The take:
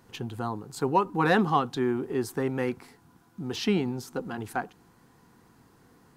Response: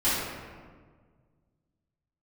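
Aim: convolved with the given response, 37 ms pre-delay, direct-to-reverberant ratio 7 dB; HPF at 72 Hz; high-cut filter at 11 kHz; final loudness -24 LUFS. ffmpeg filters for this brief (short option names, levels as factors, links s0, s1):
-filter_complex "[0:a]highpass=72,lowpass=11000,asplit=2[s0][s1];[1:a]atrim=start_sample=2205,adelay=37[s2];[s1][s2]afir=irnorm=-1:irlink=0,volume=0.0944[s3];[s0][s3]amix=inputs=2:normalize=0,volume=1.5"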